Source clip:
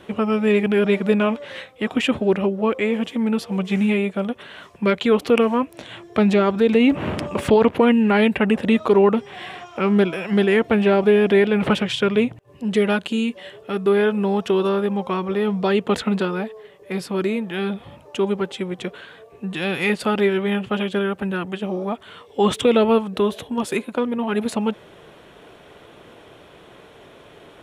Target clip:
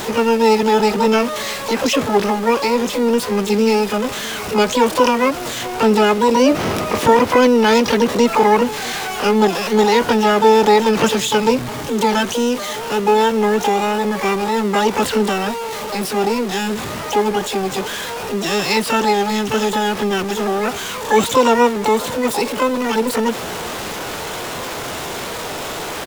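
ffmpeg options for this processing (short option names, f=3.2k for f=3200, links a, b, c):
-filter_complex "[0:a]aeval=exprs='val(0)+0.5*0.075*sgn(val(0))':c=same,asplit=2[a][b];[b]asetrate=88200,aresample=44100,atempo=0.5,volume=-1dB[c];[a][c]amix=inputs=2:normalize=0,asplit=2[d][e];[e]aecho=0:1:687:0.0891[f];[d][f]amix=inputs=2:normalize=0,asetrate=46746,aresample=44100,volume=-1dB"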